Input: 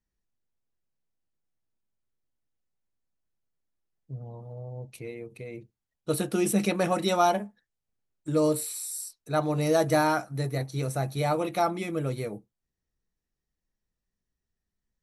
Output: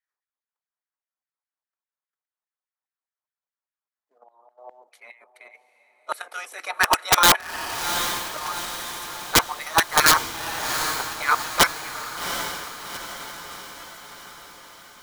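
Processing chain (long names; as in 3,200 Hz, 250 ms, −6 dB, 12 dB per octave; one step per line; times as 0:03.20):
output level in coarse steps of 13 dB
gate on every frequency bin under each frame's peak −10 dB weak
auto-filter high-pass saw down 4.9 Hz 900–2,000 Hz
Bessel high-pass filter 440 Hz, order 4
tilt shelving filter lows +9.5 dB, about 1,100 Hz
noise gate −34 dBFS, range −20 dB
wrap-around overflow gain 31 dB
notch filter 2,700 Hz, Q 16
feedback delay with all-pass diffusion 768 ms, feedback 55%, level −13 dB
boost into a limiter +35 dB
level −5.5 dB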